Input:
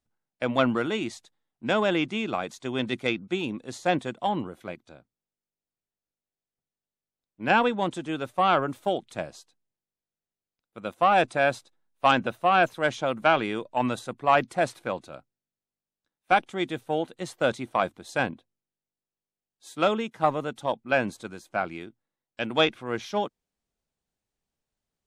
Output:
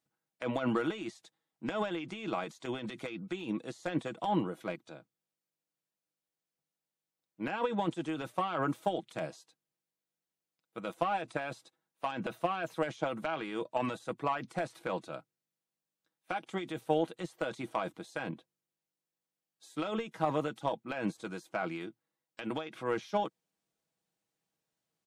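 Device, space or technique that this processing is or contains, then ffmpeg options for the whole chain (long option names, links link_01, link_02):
de-esser from a sidechain: -filter_complex "[0:a]highpass=140,asplit=2[link_01][link_02];[link_02]highpass=6000,apad=whole_len=1105416[link_03];[link_01][link_03]sidechaincompress=threshold=-57dB:ratio=16:attack=3.5:release=39,aecho=1:1:6.2:0.46"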